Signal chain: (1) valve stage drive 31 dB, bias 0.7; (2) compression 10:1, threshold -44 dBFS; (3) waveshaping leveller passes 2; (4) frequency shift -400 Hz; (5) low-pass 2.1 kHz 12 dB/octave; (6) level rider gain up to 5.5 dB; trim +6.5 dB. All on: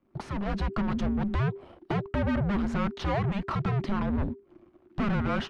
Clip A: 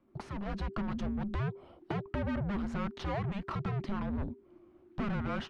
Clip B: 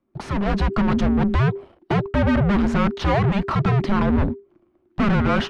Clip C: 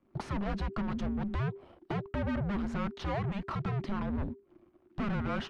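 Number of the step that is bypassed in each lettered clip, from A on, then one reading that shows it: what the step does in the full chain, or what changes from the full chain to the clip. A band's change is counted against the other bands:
3, loudness change -6.5 LU; 2, loudness change +9.0 LU; 6, momentary loudness spread change -1 LU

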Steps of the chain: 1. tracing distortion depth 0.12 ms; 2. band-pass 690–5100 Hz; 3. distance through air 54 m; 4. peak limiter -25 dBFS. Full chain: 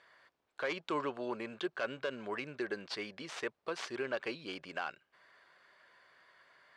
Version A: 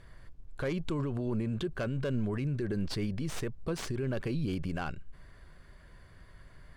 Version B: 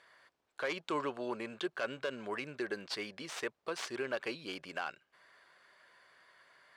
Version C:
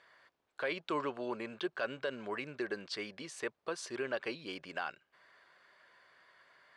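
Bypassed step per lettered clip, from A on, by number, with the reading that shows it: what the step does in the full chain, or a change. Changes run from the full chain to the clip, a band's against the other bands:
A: 2, 125 Hz band +22.0 dB; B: 3, 8 kHz band +4.0 dB; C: 1, 8 kHz band +3.5 dB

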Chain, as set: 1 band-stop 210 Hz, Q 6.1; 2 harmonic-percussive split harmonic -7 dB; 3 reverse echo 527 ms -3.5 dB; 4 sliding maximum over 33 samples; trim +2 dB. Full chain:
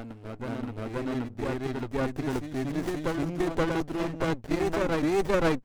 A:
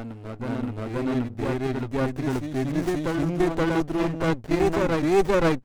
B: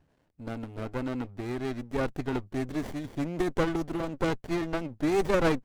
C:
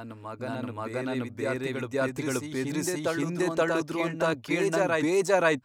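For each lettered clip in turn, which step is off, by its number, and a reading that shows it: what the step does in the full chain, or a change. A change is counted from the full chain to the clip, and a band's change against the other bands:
2, 125 Hz band +2.0 dB; 3, loudness change -1.5 LU; 4, crest factor change +3.0 dB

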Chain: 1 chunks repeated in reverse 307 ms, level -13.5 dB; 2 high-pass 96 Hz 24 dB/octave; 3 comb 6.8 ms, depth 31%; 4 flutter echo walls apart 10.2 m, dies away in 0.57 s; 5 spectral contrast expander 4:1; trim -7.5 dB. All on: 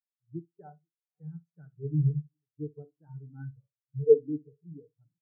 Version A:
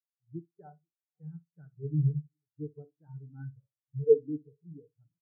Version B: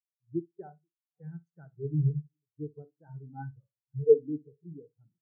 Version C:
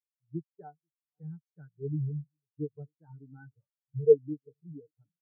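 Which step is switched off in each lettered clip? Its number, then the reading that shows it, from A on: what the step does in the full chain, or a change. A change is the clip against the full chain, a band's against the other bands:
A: 2, loudness change -2.5 LU; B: 3, loudness change -2.0 LU; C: 4, momentary loudness spread change +2 LU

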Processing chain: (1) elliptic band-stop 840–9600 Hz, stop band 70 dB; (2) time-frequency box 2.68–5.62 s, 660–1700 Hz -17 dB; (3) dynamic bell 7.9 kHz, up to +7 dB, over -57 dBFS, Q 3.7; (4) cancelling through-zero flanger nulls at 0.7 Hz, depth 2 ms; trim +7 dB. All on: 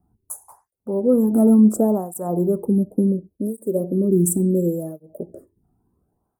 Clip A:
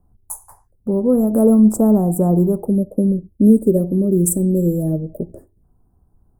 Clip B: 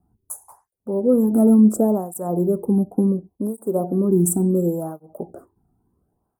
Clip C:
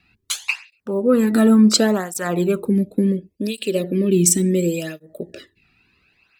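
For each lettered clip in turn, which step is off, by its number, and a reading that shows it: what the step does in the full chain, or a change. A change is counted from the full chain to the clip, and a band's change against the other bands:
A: 4, loudness change +3.5 LU; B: 2, 1 kHz band +1.5 dB; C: 1, 8 kHz band +8.0 dB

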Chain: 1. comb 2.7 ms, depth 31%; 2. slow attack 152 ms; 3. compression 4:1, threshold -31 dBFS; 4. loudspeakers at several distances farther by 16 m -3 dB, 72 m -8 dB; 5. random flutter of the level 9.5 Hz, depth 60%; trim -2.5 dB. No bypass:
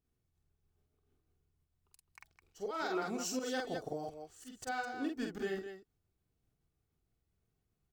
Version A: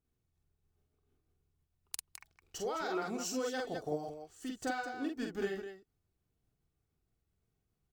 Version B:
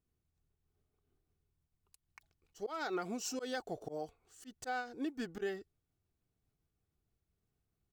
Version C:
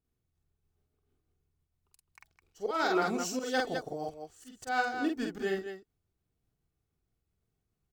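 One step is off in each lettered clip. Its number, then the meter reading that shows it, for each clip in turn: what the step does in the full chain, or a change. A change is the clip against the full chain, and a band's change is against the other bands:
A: 2, crest factor change +4.0 dB; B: 4, loudness change -2.0 LU; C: 3, loudness change +6.5 LU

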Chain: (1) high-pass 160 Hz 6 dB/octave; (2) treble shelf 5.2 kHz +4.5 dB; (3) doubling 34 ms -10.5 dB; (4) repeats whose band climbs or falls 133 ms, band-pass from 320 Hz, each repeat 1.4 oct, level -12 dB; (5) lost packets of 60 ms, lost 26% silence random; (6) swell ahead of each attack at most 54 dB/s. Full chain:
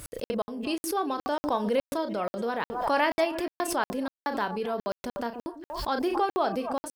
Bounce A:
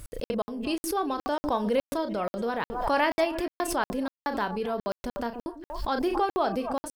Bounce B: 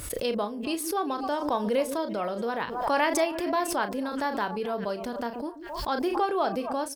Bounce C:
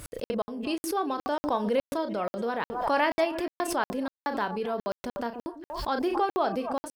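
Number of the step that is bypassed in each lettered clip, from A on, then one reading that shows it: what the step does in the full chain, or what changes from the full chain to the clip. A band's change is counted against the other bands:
1, 125 Hz band +2.0 dB; 5, 8 kHz band +3.0 dB; 2, 8 kHz band -2.0 dB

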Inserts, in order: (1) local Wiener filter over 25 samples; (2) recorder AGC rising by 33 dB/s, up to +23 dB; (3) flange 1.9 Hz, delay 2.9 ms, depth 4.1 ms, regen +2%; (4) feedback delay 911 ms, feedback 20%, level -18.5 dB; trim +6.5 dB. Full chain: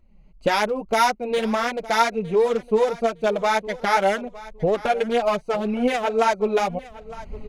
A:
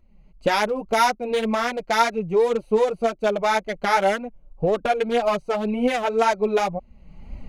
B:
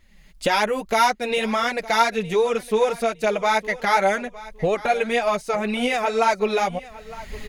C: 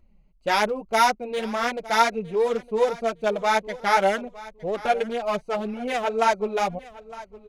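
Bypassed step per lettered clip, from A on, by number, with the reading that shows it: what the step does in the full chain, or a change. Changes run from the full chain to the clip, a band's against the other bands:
4, momentary loudness spread change -2 LU; 1, 250 Hz band -3.0 dB; 2, crest factor change +2.0 dB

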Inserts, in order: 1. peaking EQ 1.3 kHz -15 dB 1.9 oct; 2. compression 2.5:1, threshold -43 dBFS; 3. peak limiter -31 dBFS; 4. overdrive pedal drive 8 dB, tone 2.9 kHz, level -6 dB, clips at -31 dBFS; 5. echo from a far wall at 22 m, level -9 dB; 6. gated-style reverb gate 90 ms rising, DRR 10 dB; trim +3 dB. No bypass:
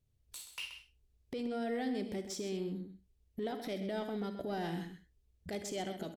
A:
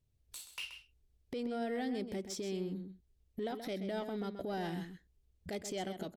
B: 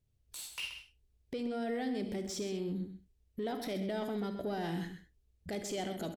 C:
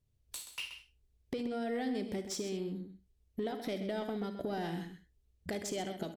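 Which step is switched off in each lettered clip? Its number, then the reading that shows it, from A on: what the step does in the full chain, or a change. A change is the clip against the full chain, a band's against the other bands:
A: 6, echo-to-direct -6.5 dB to -9.5 dB; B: 2, mean gain reduction 13.0 dB; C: 3, momentary loudness spread change -2 LU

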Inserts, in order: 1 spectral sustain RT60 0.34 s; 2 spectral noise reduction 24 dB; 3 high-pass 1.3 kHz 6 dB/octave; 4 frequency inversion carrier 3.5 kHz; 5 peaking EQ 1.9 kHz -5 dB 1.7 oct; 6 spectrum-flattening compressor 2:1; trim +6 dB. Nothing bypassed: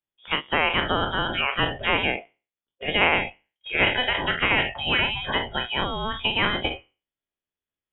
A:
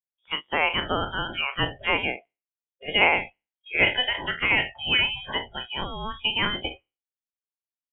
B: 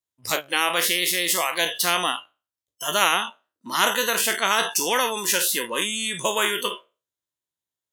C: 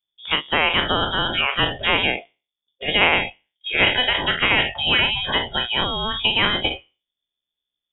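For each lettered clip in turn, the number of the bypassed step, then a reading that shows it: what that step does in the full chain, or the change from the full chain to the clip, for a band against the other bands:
6, momentary loudness spread change +4 LU; 4, 125 Hz band -12.0 dB; 3, 4 kHz band +4.5 dB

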